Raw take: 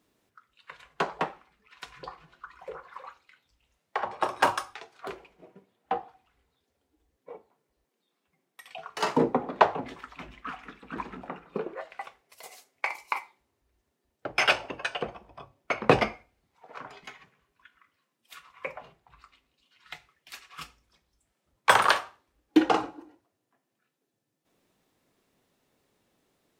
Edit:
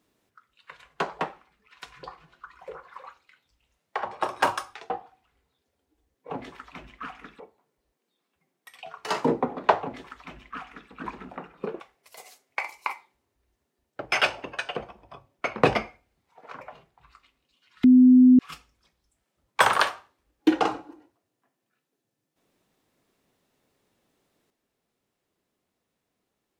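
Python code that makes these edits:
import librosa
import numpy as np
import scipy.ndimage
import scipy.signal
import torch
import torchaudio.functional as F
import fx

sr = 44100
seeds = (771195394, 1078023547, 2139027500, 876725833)

y = fx.edit(x, sr, fx.cut(start_s=4.9, length_s=1.02),
    fx.duplicate(start_s=9.74, length_s=1.1, to_s=7.32),
    fx.cut(start_s=11.72, length_s=0.34),
    fx.cut(start_s=16.87, length_s=1.83),
    fx.bleep(start_s=19.93, length_s=0.55, hz=253.0, db=-10.5), tone=tone)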